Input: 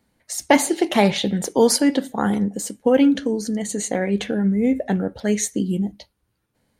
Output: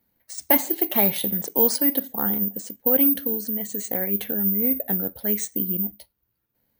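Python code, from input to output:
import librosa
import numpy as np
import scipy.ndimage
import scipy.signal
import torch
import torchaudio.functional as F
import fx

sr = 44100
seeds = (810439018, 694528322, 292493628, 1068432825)

y = (np.kron(scipy.signal.resample_poly(x, 1, 3), np.eye(3)[0]) * 3)[:len(x)]
y = y * 10.0 ** (-8.0 / 20.0)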